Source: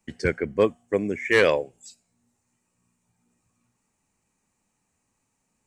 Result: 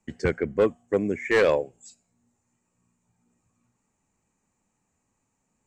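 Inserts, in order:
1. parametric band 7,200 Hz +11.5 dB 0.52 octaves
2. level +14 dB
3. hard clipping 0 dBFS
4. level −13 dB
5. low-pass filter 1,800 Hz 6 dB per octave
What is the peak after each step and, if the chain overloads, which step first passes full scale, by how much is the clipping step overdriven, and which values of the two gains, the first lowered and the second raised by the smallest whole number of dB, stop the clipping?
−7.5, +6.5, 0.0, −13.0, −13.0 dBFS
step 2, 6.5 dB
step 2 +7 dB, step 4 −6 dB

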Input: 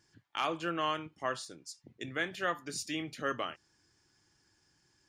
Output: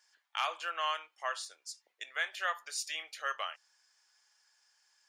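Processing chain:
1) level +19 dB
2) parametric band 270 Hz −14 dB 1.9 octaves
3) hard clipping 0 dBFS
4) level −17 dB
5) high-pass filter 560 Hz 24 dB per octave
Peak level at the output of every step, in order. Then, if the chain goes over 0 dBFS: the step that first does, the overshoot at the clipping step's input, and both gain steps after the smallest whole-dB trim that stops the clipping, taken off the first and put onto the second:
−0.5, −2.5, −2.5, −19.5, −18.0 dBFS
no step passes full scale

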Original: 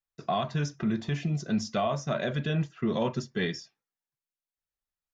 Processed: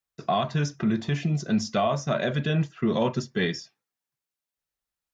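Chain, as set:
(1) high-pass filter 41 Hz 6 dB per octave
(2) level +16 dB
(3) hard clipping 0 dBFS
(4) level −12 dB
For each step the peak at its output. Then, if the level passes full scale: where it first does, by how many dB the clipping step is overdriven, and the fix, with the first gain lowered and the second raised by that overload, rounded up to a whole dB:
−18.0, −2.0, −2.0, −14.0 dBFS
no step passes full scale

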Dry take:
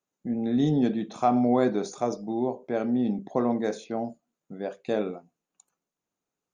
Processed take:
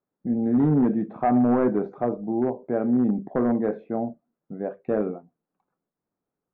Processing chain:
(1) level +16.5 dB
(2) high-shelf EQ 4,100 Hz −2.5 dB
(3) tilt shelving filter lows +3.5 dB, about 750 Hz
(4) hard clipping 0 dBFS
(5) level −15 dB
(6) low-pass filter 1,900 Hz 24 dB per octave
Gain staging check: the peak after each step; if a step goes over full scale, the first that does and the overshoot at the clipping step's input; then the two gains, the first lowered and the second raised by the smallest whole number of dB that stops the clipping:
+6.0, +6.0, +7.5, 0.0, −15.0, −14.0 dBFS
step 1, 7.5 dB
step 1 +8.5 dB, step 5 −7 dB

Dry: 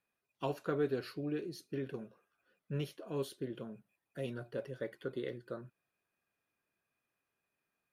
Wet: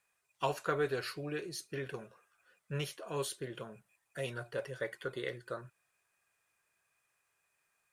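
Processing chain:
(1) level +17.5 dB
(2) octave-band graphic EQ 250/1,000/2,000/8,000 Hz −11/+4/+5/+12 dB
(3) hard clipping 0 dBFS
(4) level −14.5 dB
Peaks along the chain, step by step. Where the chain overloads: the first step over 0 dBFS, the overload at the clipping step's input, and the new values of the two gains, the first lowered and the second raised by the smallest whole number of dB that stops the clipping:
−4.0, −3.5, −3.5, −18.0 dBFS
no step passes full scale

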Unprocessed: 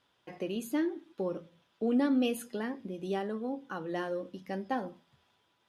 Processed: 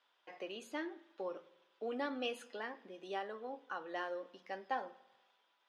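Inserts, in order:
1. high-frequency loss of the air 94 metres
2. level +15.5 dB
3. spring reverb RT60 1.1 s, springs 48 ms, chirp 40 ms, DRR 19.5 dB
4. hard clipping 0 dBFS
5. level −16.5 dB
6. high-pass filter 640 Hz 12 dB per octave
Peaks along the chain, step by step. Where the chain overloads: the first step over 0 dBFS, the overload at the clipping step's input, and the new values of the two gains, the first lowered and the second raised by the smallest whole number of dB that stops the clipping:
−19.0, −3.5, −3.0, −3.0, −19.5, −24.5 dBFS
no step passes full scale

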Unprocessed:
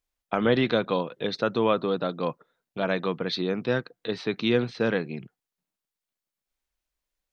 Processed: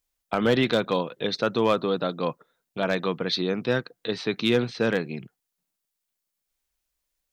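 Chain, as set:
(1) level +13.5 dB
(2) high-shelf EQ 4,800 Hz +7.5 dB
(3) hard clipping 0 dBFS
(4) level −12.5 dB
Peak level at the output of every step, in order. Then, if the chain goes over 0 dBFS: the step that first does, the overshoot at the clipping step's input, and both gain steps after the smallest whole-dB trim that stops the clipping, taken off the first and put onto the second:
+5.0, +5.5, 0.0, −12.5 dBFS
step 1, 5.5 dB
step 1 +7.5 dB, step 4 −6.5 dB

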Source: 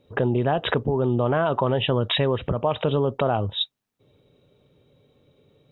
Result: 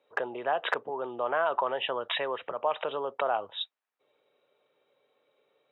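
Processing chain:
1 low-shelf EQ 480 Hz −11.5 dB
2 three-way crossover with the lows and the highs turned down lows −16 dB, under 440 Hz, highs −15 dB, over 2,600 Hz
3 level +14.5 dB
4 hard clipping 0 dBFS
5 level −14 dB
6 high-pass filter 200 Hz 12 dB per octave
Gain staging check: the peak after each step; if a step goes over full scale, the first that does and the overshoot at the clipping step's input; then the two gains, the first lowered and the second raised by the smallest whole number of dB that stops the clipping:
−11.0, −11.5, +3.0, 0.0, −14.0, −13.0 dBFS
step 3, 3.0 dB
step 3 +11.5 dB, step 5 −11 dB

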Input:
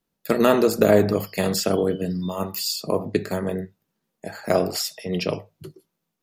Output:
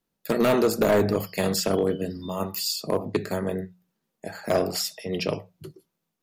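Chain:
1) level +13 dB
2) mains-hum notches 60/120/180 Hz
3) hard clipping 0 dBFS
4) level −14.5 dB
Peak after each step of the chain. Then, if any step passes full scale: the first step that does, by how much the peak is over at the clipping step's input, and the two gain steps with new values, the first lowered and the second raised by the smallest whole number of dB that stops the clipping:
+10.0, +10.0, 0.0, −14.5 dBFS
step 1, 10.0 dB
step 1 +3 dB, step 4 −4.5 dB

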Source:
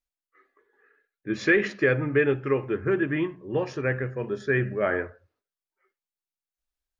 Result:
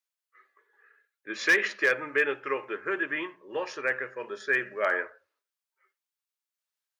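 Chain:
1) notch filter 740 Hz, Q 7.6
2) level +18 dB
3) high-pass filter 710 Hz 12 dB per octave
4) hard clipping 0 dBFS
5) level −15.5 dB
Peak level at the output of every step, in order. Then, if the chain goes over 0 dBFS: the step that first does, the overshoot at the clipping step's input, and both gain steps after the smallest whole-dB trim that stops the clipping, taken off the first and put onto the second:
−9.5, +8.5, +6.5, 0.0, −15.5 dBFS
step 2, 6.5 dB
step 2 +11 dB, step 5 −8.5 dB

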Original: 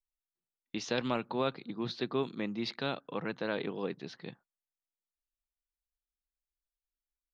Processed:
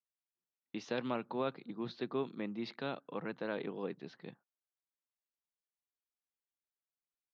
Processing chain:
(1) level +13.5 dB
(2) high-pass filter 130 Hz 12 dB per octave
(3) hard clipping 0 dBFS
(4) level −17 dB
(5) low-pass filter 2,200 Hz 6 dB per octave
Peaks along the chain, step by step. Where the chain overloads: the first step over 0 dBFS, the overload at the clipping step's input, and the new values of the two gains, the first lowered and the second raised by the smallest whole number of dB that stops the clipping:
−4.0, −4.0, −4.0, −21.0, −22.0 dBFS
no step passes full scale

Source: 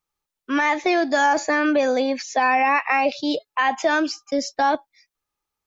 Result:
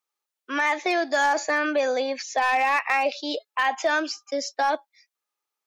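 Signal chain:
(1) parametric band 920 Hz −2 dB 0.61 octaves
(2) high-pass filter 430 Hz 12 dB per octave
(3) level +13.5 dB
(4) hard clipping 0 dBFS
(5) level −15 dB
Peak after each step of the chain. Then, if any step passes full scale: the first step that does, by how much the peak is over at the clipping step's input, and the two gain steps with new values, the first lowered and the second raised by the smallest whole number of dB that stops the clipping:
−9.0, −8.5, +5.0, 0.0, −15.0 dBFS
step 3, 5.0 dB
step 3 +8.5 dB, step 5 −10 dB

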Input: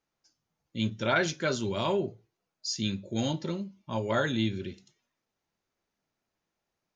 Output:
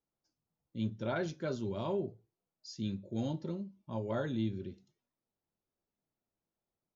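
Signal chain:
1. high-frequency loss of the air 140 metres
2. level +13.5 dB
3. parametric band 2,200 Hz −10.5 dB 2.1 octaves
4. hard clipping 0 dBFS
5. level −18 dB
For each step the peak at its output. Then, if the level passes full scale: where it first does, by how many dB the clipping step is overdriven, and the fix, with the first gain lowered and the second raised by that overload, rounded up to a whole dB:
−15.0, −1.5, −5.0, −5.0, −23.0 dBFS
no step passes full scale

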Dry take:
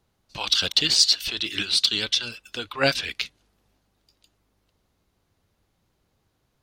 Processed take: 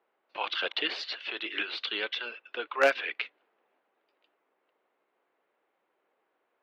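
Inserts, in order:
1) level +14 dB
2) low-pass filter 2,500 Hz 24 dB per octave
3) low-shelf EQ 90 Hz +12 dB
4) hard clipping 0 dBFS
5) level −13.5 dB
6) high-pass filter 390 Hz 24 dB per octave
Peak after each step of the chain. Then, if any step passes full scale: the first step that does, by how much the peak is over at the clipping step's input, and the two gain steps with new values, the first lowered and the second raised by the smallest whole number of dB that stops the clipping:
+10.5, +6.5, +7.5, 0.0, −13.5, −8.0 dBFS
step 1, 7.5 dB
step 1 +6 dB, step 5 −5.5 dB

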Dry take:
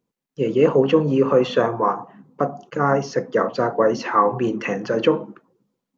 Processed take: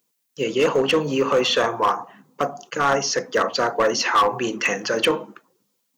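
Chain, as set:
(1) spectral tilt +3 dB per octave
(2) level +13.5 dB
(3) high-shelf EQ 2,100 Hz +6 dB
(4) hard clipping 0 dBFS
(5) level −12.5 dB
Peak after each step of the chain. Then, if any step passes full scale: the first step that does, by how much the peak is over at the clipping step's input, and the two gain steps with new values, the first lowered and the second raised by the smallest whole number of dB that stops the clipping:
−4.5, +9.0, +10.0, 0.0, −12.5 dBFS
step 2, 10.0 dB
step 2 +3.5 dB, step 5 −2.5 dB

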